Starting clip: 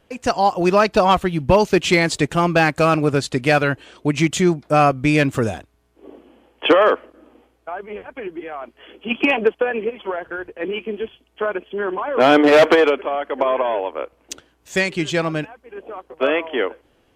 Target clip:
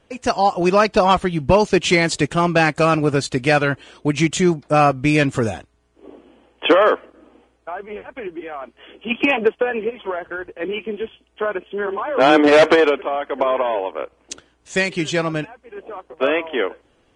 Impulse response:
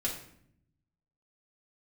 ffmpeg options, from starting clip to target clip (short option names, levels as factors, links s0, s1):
-filter_complex "[0:a]asplit=3[s0][s1][s2];[s0]afade=t=out:st=11.86:d=0.02[s3];[s1]afreqshift=21,afade=t=in:st=11.86:d=0.02,afade=t=out:st=12.37:d=0.02[s4];[s2]afade=t=in:st=12.37:d=0.02[s5];[s3][s4][s5]amix=inputs=3:normalize=0" -ar 22050 -c:a libvorbis -b:a 32k